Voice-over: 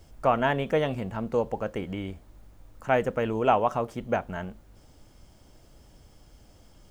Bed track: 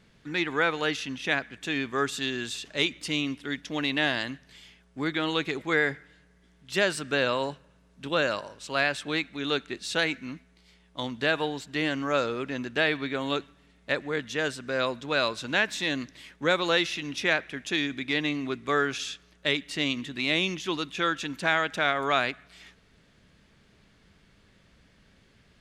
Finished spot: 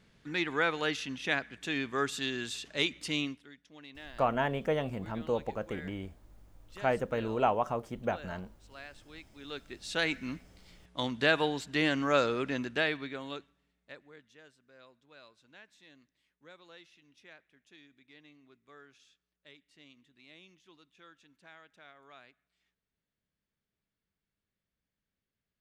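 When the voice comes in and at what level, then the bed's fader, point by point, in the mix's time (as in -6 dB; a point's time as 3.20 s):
3.95 s, -5.5 dB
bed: 3.24 s -4 dB
3.53 s -22.5 dB
9.13 s -22.5 dB
10.20 s -0.5 dB
12.53 s -0.5 dB
14.52 s -30 dB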